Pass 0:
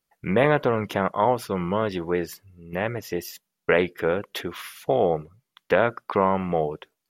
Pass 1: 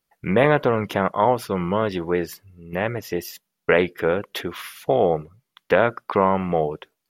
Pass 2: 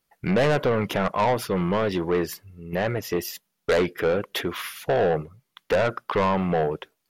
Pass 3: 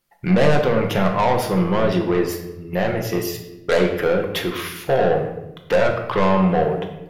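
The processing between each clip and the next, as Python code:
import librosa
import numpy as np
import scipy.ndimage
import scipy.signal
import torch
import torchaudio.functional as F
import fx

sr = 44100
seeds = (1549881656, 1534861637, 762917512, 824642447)

y1 = fx.peak_eq(x, sr, hz=7300.0, db=-2.0, octaves=0.77)
y1 = y1 * librosa.db_to_amplitude(2.5)
y2 = 10.0 ** (-18.5 / 20.0) * np.tanh(y1 / 10.0 ** (-18.5 / 20.0))
y2 = y2 * librosa.db_to_amplitude(2.5)
y3 = fx.room_shoebox(y2, sr, seeds[0], volume_m3=350.0, walls='mixed', distance_m=0.89)
y3 = y3 * librosa.db_to_amplitude(2.0)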